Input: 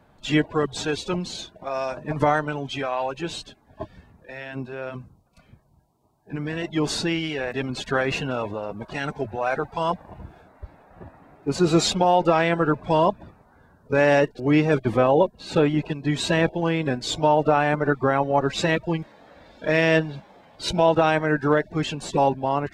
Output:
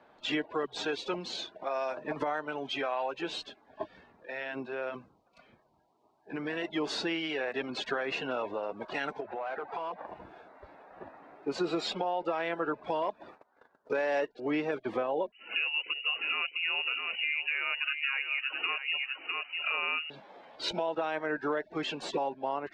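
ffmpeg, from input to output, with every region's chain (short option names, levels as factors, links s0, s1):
-filter_complex "[0:a]asettb=1/sr,asplit=3[s0][s1][s2];[s0]atrim=end=9.204[s3];[s1]atrim=start=9.2:end=10.07,asetpts=PTS-STARTPTS,afade=t=in:d=0.004:c=qsin,afade=t=out:st=0.866:d=0.004:c=qsin,asplit=2[s4][s5];[s5]highpass=f=720:p=1,volume=6.31,asoftclip=type=tanh:threshold=0.299[s6];[s4][s6]amix=inputs=2:normalize=0,lowpass=f=1200:p=1,volume=0.501,acompressor=threshold=0.0251:ratio=6:attack=3.2:release=140:knee=1:detection=peak[s7];[s2]atrim=start=10.066[s8];[s3][s7]acrossfade=d=0.004:c1=hsin:c2=qsin[s9];[s9][s8]acrossfade=d=0.004:c1=qsin:c2=hsin,asettb=1/sr,asplit=3[s10][s11][s12];[s10]atrim=end=11.634[s13];[s11]atrim=start=11.63:end=12.24,asetpts=PTS-STARTPTS,afade=t=in:d=0.004:c=qsin,afade=t=out:st=0.606:d=0.004:c=qsin,highshelf=f=8100:g=-4,bandreject=f=6200:w=8.1[s14];[s12]atrim=start=12.236[s15];[s13][s14]acrossfade=d=0.004:c1=hsin:c2=qsin[s16];[s16][s15]acrossfade=d=0.004:c1=qsin:c2=hsin,asettb=1/sr,asplit=3[s17][s18][s19];[s17]atrim=end=13.024[s20];[s18]atrim=start=13.02:end=14.27,asetpts=PTS-STARTPTS,afade=t=in:d=0.004:c=qsin,afade=t=out:st=1.246:d=0.004:c=qsin,agate=range=0.0891:threshold=0.00224:ratio=16:release=100:detection=peak,bass=f=250:g=-7,treble=f=4000:g=3,acontrast=86[s21];[s19]atrim=start=14.266[s22];[s20][s21]acrossfade=d=0.004:c1=hsin:c2=qsin[s23];[s23][s22]acrossfade=d=0.004:c1=qsin:c2=hsin,asettb=1/sr,asplit=3[s24][s25][s26];[s24]atrim=end=15.324[s27];[s25]atrim=start=15.32:end=20.1,asetpts=PTS-STARTPTS,afade=t=in:d=0.004:c=qsin,afade=t=out:st=4.776:d=0.004:c=qsin,lowpass=f=2600:t=q:w=0.5098,lowpass=f=2600:t=q:w=0.6013,lowpass=f=2600:t=q:w=0.9,lowpass=f=2600:t=q:w=2.563,afreqshift=-3000,aecho=1:1:652:0.299,atrim=end_sample=210798[s28];[s26]atrim=start=20.096[s29];[s27][s28]acrossfade=d=0.004:c1=hsin:c2=qsin[s30];[s30][s29]acrossfade=d=0.004:c1=qsin:c2=hsin,acrossover=split=270 5100:gain=0.0891 1 0.126[s31][s32][s33];[s31][s32][s33]amix=inputs=3:normalize=0,alimiter=limit=0.178:level=0:latency=1:release=390,acompressor=threshold=0.0224:ratio=2"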